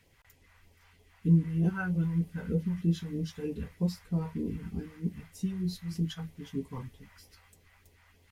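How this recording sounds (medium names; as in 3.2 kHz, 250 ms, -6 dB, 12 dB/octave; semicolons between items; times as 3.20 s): phasing stages 2, 3.2 Hz, lowest notch 300–1400 Hz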